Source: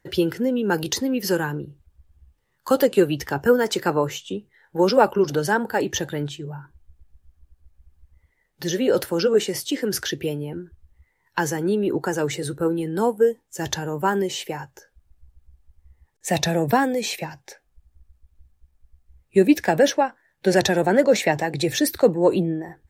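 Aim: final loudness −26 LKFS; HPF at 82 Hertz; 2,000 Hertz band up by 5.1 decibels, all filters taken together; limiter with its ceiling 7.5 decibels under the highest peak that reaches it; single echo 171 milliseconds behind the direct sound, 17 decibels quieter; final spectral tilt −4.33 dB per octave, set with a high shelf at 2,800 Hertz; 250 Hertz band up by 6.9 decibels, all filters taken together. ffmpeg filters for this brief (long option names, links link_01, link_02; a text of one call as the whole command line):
ffmpeg -i in.wav -af "highpass=82,equalizer=frequency=250:width_type=o:gain=9,equalizer=frequency=2000:width_type=o:gain=4,highshelf=frequency=2800:gain=7,alimiter=limit=-6dB:level=0:latency=1,aecho=1:1:171:0.141,volume=-7.5dB" out.wav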